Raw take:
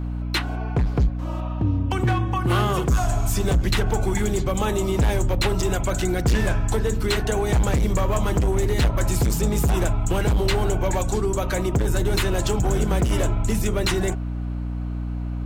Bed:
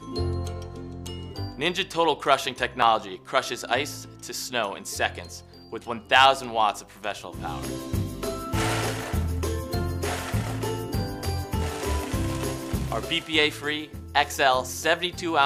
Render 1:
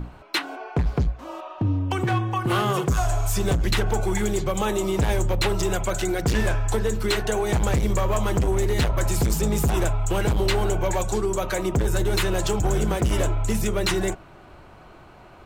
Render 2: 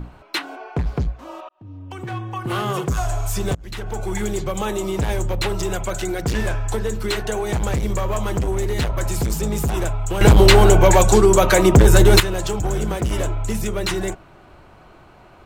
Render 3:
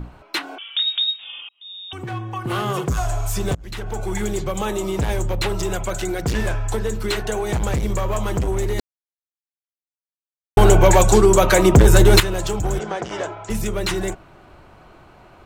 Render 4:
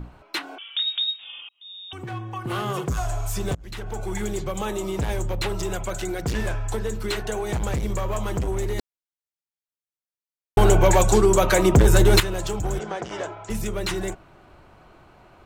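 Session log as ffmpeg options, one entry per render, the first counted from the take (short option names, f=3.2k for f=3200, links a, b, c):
-af "bandreject=f=60:t=h:w=6,bandreject=f=120:t=h:w=6,bandreject=f=180:t=h:w=6,bandreject=f=240:t=h:w=6,bandreject=f=300:t=h:w=6"
-filter_complex "[0:a]asplit=5[a][b][c][d][e];[a]atrim=end=1.49,asetpts=PTS-STARTPTS,afade=t=out:st=1.486:d=0.004:c=hsin[f];[b]atrim=start=1.49:end=3.55,asetpts=PTS-STARTPTS,afade=t=in:d=1.27,afade=t=out:st=2.056:d=0.004:c=hsin:silence=0.0630957[g];[c]atrim=start=3.55:end=10.212,asetpts=PTS-STARTPTS,afade=t=in:d=0.66:silence=0.0630957[h];[d]atrim=start=10.208:end=12.202,asetpts=PTS-STARTPTS,volume=11.5dB[i];[e]atrim=start=12.198[j];[f][g][h]concat=n=3:v=0:a=1[k];[k][i]acrossfade=d=0.004:c1=hsin:c2=hsin[l];[l][j]acrossfade=d=0.004:c1=hsin:c2=hsin"
-filter_complex "[0:a]asettb=1/sr,asplit=3[a][b][c];[a]atrim=end=0.584[d];[b]atrim=start=0.58:end=1.93,asetpts=PTS-STARTPTS,afade=t=in:d=0.004:c=qsin,afade=t=out:st=1.346:d=0.004:c=qsin,lowpass=f=3.2k:t=q:w=0.5098,lowpass=f=3.2k:t=q:w=0.6013,lowpass=f=3.2k:t=q:w=0.9,lowpass=f=3.2k:t=q:w=2.563,afreqshift=-3800[e];[c]atrim=start=1.926[f];[d][e]acrossfade=d=0.004:c1=hsin:c2=qsin[g];[g][f]acrossfade=d=0.004:c1=qsin:c2=hsin,asplit=3[h][i][j];[h]afade=t=out:st=12.78:d=0.02[k];[i]highpass=250,equalizer=f=260:t=q:w=4:g=-9,equalizer=f=780:t=q:w=4:g=5,equalizer=f=1.6k:t=q:w=4:g=4,equalizer=f=2.6k:t=q:w=4:g=-3,equalizer=f=4k:t=q:w=4:g=-3,lowpass=f=6.3k:w=0.5412,lowpass=f=6.3k:w=1.3066,afade=t=in:st=12.78:d=0.02,afade=t=out:st=13.49:d=0.02[l];[j]afade=t=in:st=13.49:d=0.02[m];[k][l][m]amix=inputs=3:normalize=0,asplit=3[n][o][p];[n]atrim=end=8.8,asetpts=PTS-STARTPTS,afade=t=out:st=8.796:d=0.004:c=hsin[q];[o]atrim=start=8.8:end=10.57,asetpts=PTS-STARTPTS,volume=0[r];[p]atrim=start=10.57,asetpts=PTS-STARTPTS,afade=t=in:d=0.004:c=hsin[s];[q][r][s]concat=n=3:v=0:a=1"
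-af "volume=-4dB"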